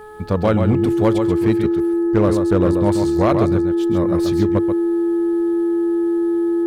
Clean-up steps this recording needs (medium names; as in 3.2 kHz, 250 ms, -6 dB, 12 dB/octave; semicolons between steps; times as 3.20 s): clip repair -8.5 dBFS; de-hum 426 Hz, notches 4; band-stop 340 Hz, Q 30; inverse comb 134 ms -6.5 dB